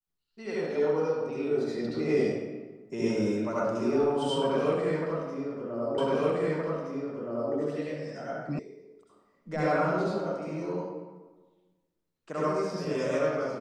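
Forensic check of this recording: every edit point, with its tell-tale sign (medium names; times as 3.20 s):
5.98 s: repeat of the last 1.57 s
8.59 s: sound stops dead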